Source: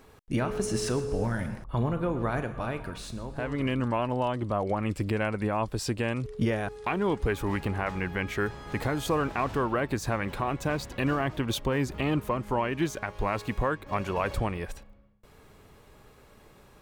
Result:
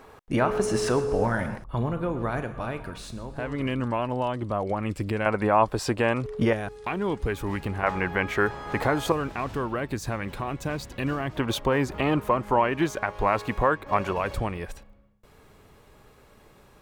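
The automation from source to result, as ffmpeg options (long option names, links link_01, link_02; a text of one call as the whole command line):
ffmpeg -i in.wav -af "asetnsamples=nb_out_samples=441:pad=0,asendcmd='1.58 equalizer g 1;5.26 equalizer g 10.5;6.53 equalizer g -1;7.83 equalizer g 9;9.12 equalizer g -2.5;11.36 equalizer g 7.5;14.13 equalizer g 1',equalizer=frequency=900:width_type=o:width=2.7:gain=9.5" out.wav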